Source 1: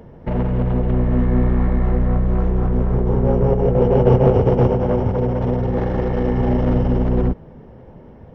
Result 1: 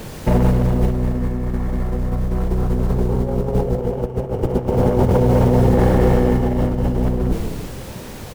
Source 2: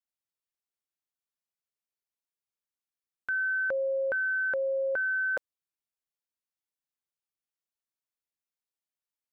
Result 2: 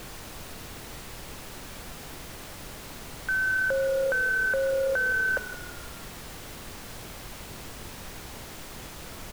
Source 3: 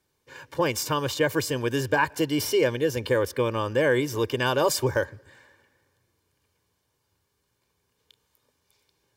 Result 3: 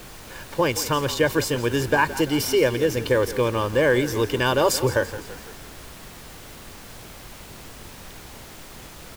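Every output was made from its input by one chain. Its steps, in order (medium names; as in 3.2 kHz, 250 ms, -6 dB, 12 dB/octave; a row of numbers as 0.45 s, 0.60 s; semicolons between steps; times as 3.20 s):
frequency-shifting echo 168 ms, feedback 54%, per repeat -36 Hz, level -14.5 dB; added noise pink -44 dBFS; compressor with a negative ratio -19 dBFS, ratio -0.5; trim +3 dB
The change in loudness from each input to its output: -0.5 LU, +1.5 LU, +3.0 LU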